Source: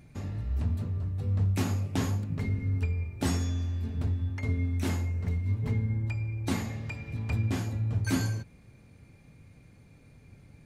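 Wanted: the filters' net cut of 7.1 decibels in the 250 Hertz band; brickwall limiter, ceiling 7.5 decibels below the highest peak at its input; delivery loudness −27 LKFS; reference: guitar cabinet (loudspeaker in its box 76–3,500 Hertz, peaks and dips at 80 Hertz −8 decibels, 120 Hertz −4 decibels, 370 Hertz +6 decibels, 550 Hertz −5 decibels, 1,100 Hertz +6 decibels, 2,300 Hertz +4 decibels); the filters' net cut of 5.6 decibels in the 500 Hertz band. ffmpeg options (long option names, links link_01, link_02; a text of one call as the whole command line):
ffmpeg -i in.wav -af "equalizer=frequency=250:width_type=o:gain=-7.5,equalizer=frequency=500:width_type=o:gain=-7.5,alimiter=level_in=1.5dB:limit=-24dB:level=0:latency=1,volume=-1.5dB,highpass=76,equalizer=frequency=80:width_type=q:width=4:gain=-8,equalizer=frequency=120:width_type=q:width=4:gain=-4,equalizer=frequency=370:width_type=q:width=4:gain=6,equalizer=frequency=550:width_type=q:width=4:gain=-5,equalizer=frequency=1100:width_type=q:width=4:gain=6,equalizer=frequency=2300:width_type=q:width=4:gain=4,lowpass=frequency=3500:width=0.5412,lowpass=frequency=3500:width=1.3066,volume=11.5dB" out.wav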